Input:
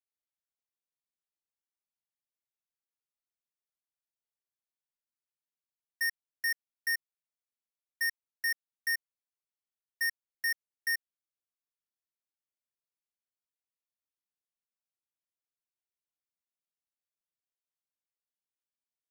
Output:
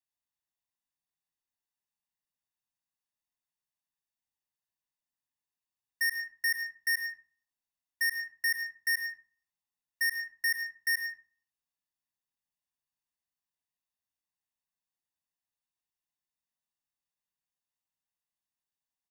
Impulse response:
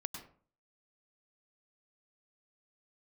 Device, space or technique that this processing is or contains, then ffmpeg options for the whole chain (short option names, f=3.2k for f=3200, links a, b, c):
microphone above a desk: -filter_complex "[0:a]aecho=1:1:1.1:0.66[a];[1:a]atrim=start_sample=2205[b];[a][b]afir=irnorm=-1:irlink=0"